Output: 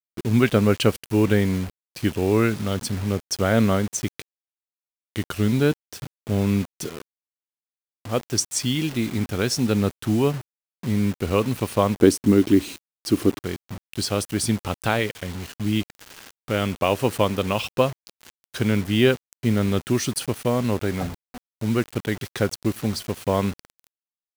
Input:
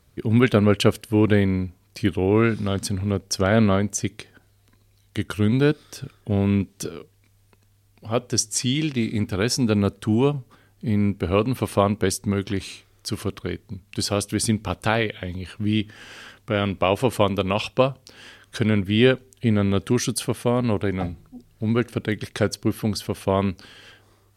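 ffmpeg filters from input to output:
-filter_complex "[0:a]asettb=1/sr,asplit=3[a][b][c];[a]atrim=end=11.974[d];[b]atrim=start=11.97:end=13.4,asetpts=PTS-STARTPTS,afade=t=in:d=0.004:c=qsin,afade=t=out:st=1.426:d=0.004:c=qsin,equalizer=f=300:w=1.4:g=15[e];[c]atrim=start=13.396[f];[d][e]acrossfade=d=0.004:c1=hsin:c2=qsin[g];[g][f]acrossfade=d=0.004:c1=qsin:c2=hsin,acrusher=bits=5:mix=0:aa=0.000001,volume=-1dB"

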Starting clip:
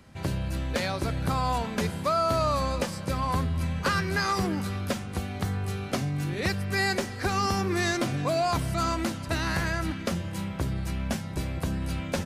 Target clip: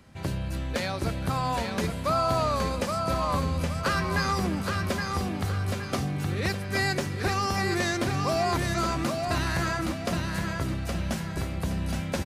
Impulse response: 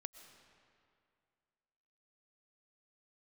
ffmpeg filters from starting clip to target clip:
-af "aecho=1:1:819|1638|2457|3276|4095:0.596|0.22|0.0815|0.0302|0.0112,volume=-1dB"

